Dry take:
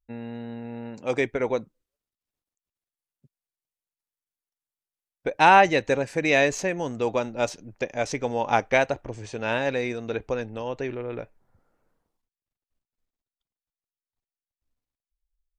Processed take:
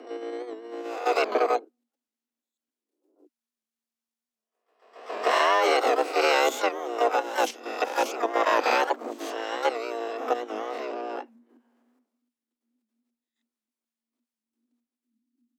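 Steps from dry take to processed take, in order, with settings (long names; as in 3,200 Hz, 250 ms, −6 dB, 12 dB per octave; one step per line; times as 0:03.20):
peak hold with a rise ahead of every peak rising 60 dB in 0.69 s
dynamic equaliser 1,500 Hz, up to −3 dB, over −34 dBFS, Q 1.6
output level in coarse steps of 12 dB
pitch-shifted copies added −12 semitones −1 dB, +12 semitones −8 dB
frequency shifter +230 Hz
wow of a warped record 78 rpm, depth 100 cents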